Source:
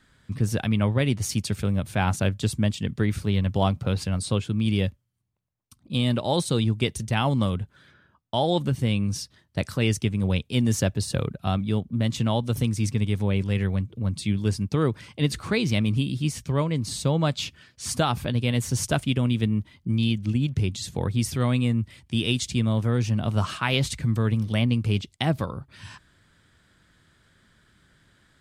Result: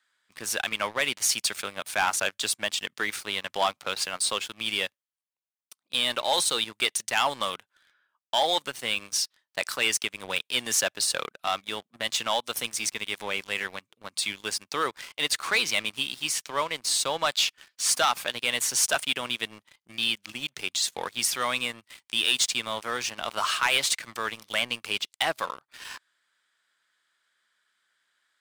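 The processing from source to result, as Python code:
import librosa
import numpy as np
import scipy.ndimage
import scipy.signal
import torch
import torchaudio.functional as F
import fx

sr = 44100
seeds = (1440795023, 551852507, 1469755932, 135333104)

y = scipy.signal.sosfilt(scipy.signal.butter(2, 1000.0, 'highpass', fs=sr, output='sos'), x)
y = fx.leveller(y, sr, passes=3)
y = y * librosa.db_to_amplitude(-3.0)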